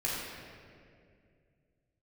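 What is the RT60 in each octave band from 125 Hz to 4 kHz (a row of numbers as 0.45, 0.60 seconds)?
3.2, 2.8, 2.6, 1.9, 2.0, 1.4 seconds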